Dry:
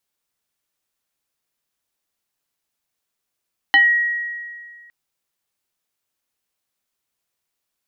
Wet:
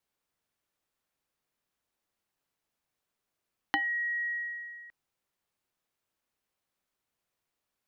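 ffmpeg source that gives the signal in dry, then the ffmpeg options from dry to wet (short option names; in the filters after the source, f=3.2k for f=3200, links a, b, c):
-f lavfi -i "aevalsrc='0.398*pow(10,-3*t/1.92)*sin(2*PI*1900*t+1*pow(10,-3*t/0.23)*sin(2*PI*0.58*1900*t))':d=1.16:s=44100"
-filter_complex "[0:a]acrossover=split=570[a][b];[b]acompressor=threshold=-27dB:ratio=12[c];[a][c]amix=inputs=2:normalize=0,highshelf=f=2.8k:g=-9"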